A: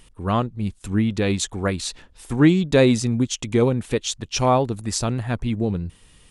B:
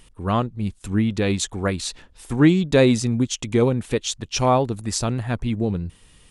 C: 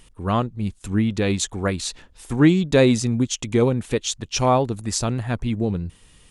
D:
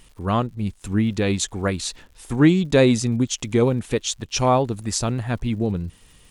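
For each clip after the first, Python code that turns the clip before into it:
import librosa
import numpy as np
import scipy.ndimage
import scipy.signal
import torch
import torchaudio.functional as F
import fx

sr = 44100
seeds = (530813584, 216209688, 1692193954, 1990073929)

y1 = x
y2 = fx.peak_eq(y1, sr, hz=6700.0, db=2.0, octaves=0.31)
y3 = fx.dmg_crackle(y2, sr, seeds[0], per_s=170.0, level_db=-44.0)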